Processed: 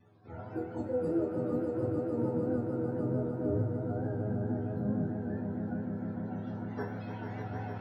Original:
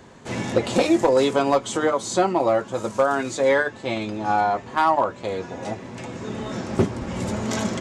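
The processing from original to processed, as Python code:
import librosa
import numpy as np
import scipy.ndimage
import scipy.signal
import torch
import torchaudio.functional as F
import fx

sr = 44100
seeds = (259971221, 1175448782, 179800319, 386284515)

p1 = fx.octave_mirror(x, sr, pivot_hz=410.0)
p2 = fx.vibrato(p1, sr, rate_hz=2.0, depth_cents=18.0)
p3 = fx.resonator_bank(p2, sr, root=40, chord='major', decay_s=0.44)
p4 = p3 + fx.echo_swell(p3, sr, ms=150, loudest=5, wet_db=-8.5, dry=0)
y = fx.vibrato(p4, sr, rate_hz=4.5, depth_cents=36.0)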